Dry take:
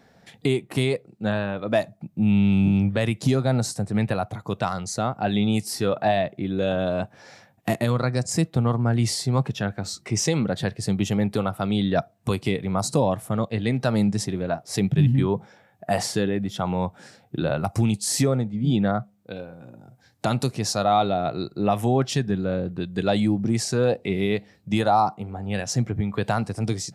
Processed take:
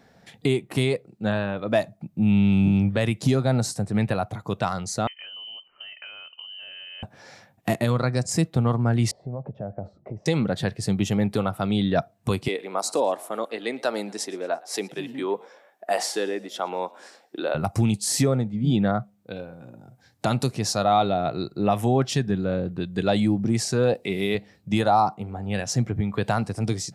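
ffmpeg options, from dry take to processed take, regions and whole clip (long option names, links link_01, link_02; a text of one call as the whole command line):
ffmpeg -i in.wav -filter_complex "[0:a]asettb=1/sr,asplit=3[link_01][link_02][link_03];[link_01]atrim=end=5.074[link_04];[link_02]atrim=start=5.07:end=7.03,asetpts=PTS-STARTPTS,afade=type=in:duration=0.004:curve=qsin,afade=type=out:start_time=1.956:duration=0.004:curve=qsin,equalizer=frequency=670:width=1:gain=-10,acompressor=threshold=-36dB:ratio=12:attack=3.2:release=140:knee=1:detection=peak,lowpass=frequency=2700:width_type=q:width=0.5098,lowpass=frequency=2700:width_type=q:width=0.6013,lowpass=frequency=2700:width_type=q:width=0.9,lowpass=frequency=2700:width_type=q:width=2.563,afreqshift=-3200[link_05];[link_03]atrim=start=7.026[link_06];[link_04][link_05]acrossfade=duration=0.004:curve1=hsin:curve2=qsin[link_07];[link_07][link_06]acrossfade=duration=0.004:curve1=qsin:curve2=hsin,asettb=1/sr,asplit=3[link_08][link_09][link_10];[link_08]atrim=end=9.114[link_11];[link_09]atrim=start=9.11:end=10.26,asetpts=PTS-STARTPTS,afade=type=in:duration=0.004:curve=qsin,afade=type=out:start_time=1.146:duration=0.004:curve=qsin,equalizer=frequency=400:width_type=o:width=1.6:gain=-6,acompressor=threshold=-30dB:ratio=8:attack=3.2:release=140:knee=1:detection=peak,lowpass=frequency=600:width_type=q:width=4.3[link_12];[link_10]atrim=start=10.256[link_13];[link_11][link_12]acrossfade=duration=0.004:curve1=hsin:curve2=qsin[link_14];[link_14][link_13]acrossfade=duration=0.004:curve1=qsin:curve2=hsin,asettb=1/sr,asplit=3[link_15][link_16][link_17];[link_15]atrim=end=12.484[link_18];[link_16]atrim=start=12.48:end=17.55,asetpts=PTS-STARTPTS,afade=type=in:duration=0.004:curve=qsin,afade=type=out:start_time=5.066:duration=0.004:curve=qsin,highpass=frequency=320:width=0.5412,highpass=frequency=320:width=1.3066,asplit=4[link_19][link_20][link_21][link_22];[link_20]adelay=114,afreqshift=61,volume=-23dB[link_23];[link_21]adelay=228,afreqshift=122,volume=-29.4dB[link_24];[link_22]adelay=342,afreqshift=183,volume=-35.8dB[link_25];[link_19][link_23][link_24][link_25]amix=inputs=4:normalize=0,atrim=end_sample=223587[link_26];[link_17]atrim=start=17.546[link_27];[link_18][link_26]acrossfade=duration=0.004:curve1=hsin:curve2=qsin[link_28];[link_28][link_27]acrossfade=duration=0.004:curve1=qsin:curve2=hsin,asettb=1/sr,asplit=3[link_29][link_30][link_31];[link_29]atrim=end=23.944[link_32];[link_30]atrim=start=23.94:end=24.35,asetpts=PTS-STARTPTS,afade=type=in:duration=0.004:curve=qsin,afade=type=out:start_time=0.406:duration=0.004:curve=qsin,highpass=frequency=190:poles=1,aemphasis=mode=production:type=cd[link_33];[link_31]atrim=start=24.346[link_34];[link_32][link_33]acrossfade=duration=0.004:curve1=hsin:curve2=qsin[link_35];[link_35][link_34]acrossfade=duration=0.004:curve1=qsin:curve2=hsin" out.wav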